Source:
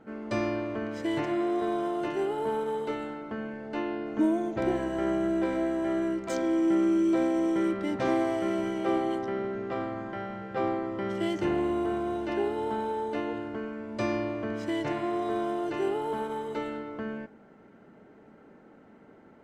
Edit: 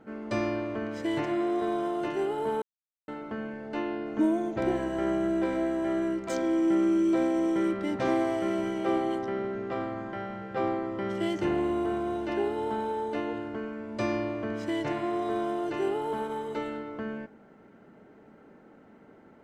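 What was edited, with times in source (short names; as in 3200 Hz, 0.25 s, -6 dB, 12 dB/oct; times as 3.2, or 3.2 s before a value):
2.62–3.08 mute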